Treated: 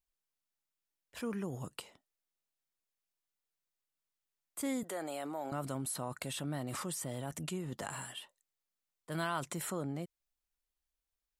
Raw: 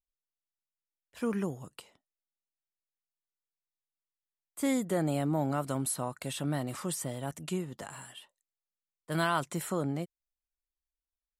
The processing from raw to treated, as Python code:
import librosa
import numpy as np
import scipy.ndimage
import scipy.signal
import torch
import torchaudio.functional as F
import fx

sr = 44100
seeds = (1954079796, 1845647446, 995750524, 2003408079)

p1 = fx.highpass(x, sr, hz=540.0, slope=12, at=(4.83, 5.52))
p2 = fx.over_compress(p1, sr, threshold_db=-43.0, ratio=-1.0)
p3 = p1 + (p2 * 10.0 ** (0.0 / 20.0))
y = p3 * 10.0 ** (-7.5 / 20.0)